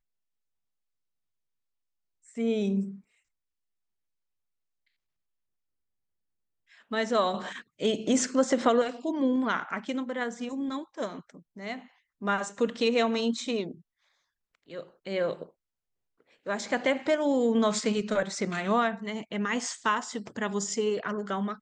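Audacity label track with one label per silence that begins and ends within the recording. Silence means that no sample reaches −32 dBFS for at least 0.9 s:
2.880000	6.920000	silence
13.710000	14.750000	silence
15.430000	16.470000	silence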